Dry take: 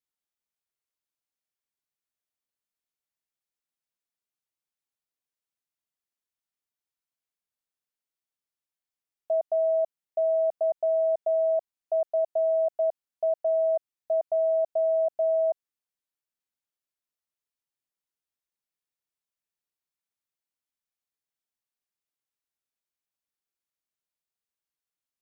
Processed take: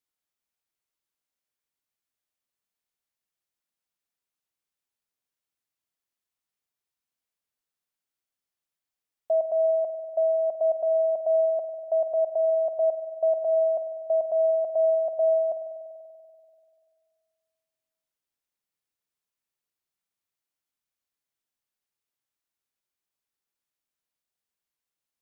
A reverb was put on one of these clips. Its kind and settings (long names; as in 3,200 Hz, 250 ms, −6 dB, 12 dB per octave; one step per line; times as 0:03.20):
spring reverb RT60 2.2 s, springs 48 ms, chirp 75 ms, DRR 8.5 dB
level +2 dB